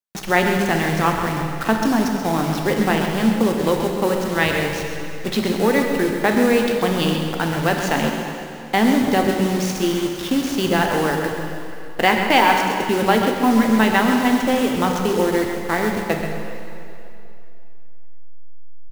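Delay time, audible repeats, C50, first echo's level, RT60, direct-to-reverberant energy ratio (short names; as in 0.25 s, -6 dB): 0.133 s, 1, 2.5 dB, -9.0 dB, 2.8 s, 1.0 dB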